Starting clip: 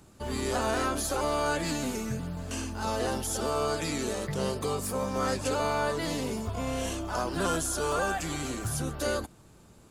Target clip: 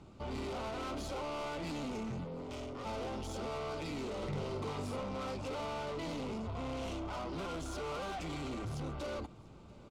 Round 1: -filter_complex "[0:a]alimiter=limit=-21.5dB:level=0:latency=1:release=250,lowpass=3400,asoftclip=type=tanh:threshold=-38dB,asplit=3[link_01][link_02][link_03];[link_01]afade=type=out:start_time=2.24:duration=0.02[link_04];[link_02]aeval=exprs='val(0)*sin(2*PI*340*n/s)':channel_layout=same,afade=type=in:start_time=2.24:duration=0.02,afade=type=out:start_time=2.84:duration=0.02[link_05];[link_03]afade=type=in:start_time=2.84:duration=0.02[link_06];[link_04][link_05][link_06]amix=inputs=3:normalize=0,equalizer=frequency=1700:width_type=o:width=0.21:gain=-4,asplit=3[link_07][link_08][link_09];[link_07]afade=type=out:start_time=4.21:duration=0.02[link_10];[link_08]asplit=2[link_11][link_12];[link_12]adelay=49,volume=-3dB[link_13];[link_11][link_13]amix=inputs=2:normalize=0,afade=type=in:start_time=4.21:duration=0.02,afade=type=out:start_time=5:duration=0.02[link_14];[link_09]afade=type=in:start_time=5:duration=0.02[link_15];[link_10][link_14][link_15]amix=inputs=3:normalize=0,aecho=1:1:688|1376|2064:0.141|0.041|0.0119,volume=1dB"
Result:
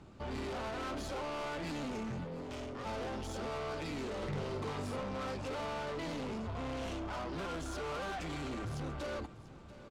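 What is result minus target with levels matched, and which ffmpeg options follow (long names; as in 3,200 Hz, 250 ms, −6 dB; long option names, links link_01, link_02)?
echo-to-direct +7 dB; 2,000 Hz band +2.5 dB
-filter_complex "[0:a]alimiter=limit=-21.5dB:level=0:latency=1:release=250,lowpass=3400,asoftclip=type=tanh:threshold=-38dB,asplit=3[link_01][link_02][link_03];[link_01]afade=type=out:start_time=2.24:duration=0.02[link_04];[link_02]aeval=exprs='val(0)*sin(2*PI*340*n/s)':channel_layout=same,afade=type=in:start_time=2.24:duration=0.02,afade=type=out:start_time=2.84:duration=0.02[link_05];[link_03]afade=type=in:start_time=2.84:duration=0.02[link_06];[link_04][link_05][link_06]amix=inputs=3:normalize=0,equalizer=frequency=1700:width_type=o:width=0.21:gain=-15.5,asplit=3[link_07][link_08][link_09];[link_07]afade=type=out:start_time=4.21:duration=0.02[link_10];[link_08]asplit=2[link_11][link_12];[link_12]adelay=49,volume=-3dB[link_13];[link_11][link_13]amix=inputs=2:normalize=0,afade=type=in:start_time=4.21:duration=0.02,afade=type=out:start_time=5:duration=0.02[link_14];[link_09]afade=type=in:start_time=5:duration=0.02[link_15];[link_10][link_14][link_15]amix=inputs=3:normalize=0,aecho=1:1:688|1376:0.0631|0.0183,volume=1dB"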